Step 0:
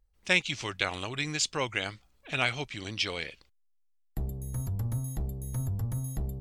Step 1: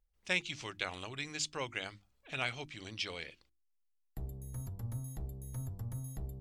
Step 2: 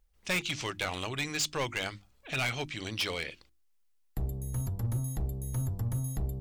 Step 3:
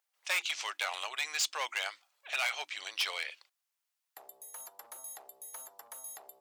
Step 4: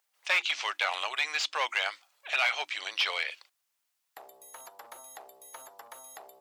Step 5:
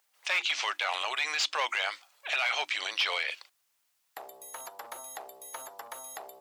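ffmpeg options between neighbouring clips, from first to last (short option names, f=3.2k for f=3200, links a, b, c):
-af "bandreject=f=50:t=h:w=6,bandreject=f=100:t=h:w=6,bandreject=f=150:t=h:w=6,bandreject=f=200:t=h:w=6,bandreject=f=250:t=h:w=6,bandreject=f=300:t=h:w=6,bandreject=f=350:t=h:w=6,volume=-8dB"
-af "volume=35dB,asoftclip=hard,volume=-35dB,volume=9dB"
-af "highpass=f=680:w=0.5412,highpass=f=680:w=1.3066"
-filter_complex "[0:a]acrossover=split=4700[a][b];[b]acompressor=threshold=-56dB:ratio=4:attack=1:release=60[c];[a][c]amix=inputs=2:normalize=0,volume=6dB"
-af "alimiter=level_in=0.5dB:limit=-24dB:level=0:latency=1:release=29,volume=-0.5dB,volume=5dB"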